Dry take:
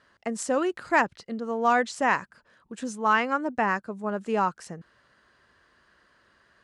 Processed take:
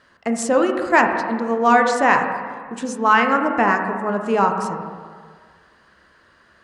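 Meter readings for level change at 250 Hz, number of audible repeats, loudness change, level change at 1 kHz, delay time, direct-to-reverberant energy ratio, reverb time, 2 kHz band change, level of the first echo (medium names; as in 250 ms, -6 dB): +9.0 dB, no echo, +8.0 dB, +8.5 dB, no echo, 4.0 dB, 1.8 s, +8.0 dB, no echo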